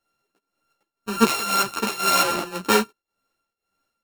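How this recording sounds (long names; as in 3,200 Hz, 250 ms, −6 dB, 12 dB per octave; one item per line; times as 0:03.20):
a buzz of ramps at a fixed pitch in blocks of 32 samples
tremolo triangle 1.9 Hz, depth 85%
a shimmering, thickened sound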